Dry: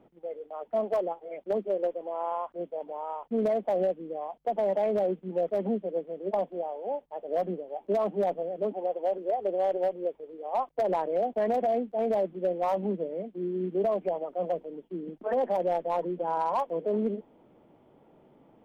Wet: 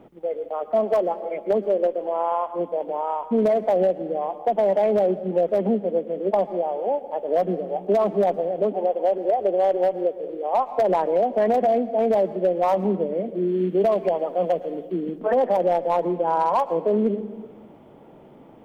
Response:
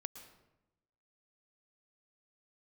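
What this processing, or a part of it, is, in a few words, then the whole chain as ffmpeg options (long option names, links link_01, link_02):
compressed reverb return: -filter_complex "[0:a]asplit=2[link_01][link_02];[1:a]atrim=start_sample=2205[link_03];[link_02][link_03]afir=irnorm=-1:irlink=0,acompressor=threshold=-36dB:ratio=6,volume=5dB[link_04];[link_01][link_04]amix=inputs=2:normalize=0,asplit=3[link_05][link_06][link_07];[link_05]afade=type=out:start_time=13.47:duration=0.02[link_08];[link_06]adynamicequalizer=threshold=0.00891:dfrequency=1800:dqfactor=0.7:tfrequency=1800:tqfactor=0.7:attack=5:release=100:ratio=0.375:range=2.5:mode=boostabove:tftype=highshelf,afade=type=in:start_time=13.47:duration=0.02,afade=type=out:start_time=15.18:duration=0.02[link_09];[link_07]afade=type=in:start_time=15.18:duration=0.02[link_10];[link_08][link_09][link_10]amix=inputs=3:normalize=0,volume=4dB"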